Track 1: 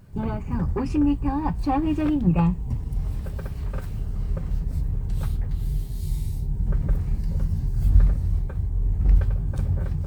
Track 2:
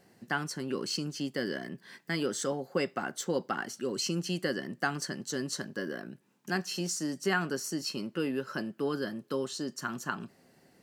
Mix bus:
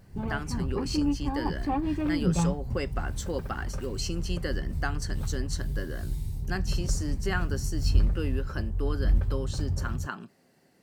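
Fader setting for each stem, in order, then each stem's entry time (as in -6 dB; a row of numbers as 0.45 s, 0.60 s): -5.5 dB, -2.0 dB; 0.00 s, 0.00 s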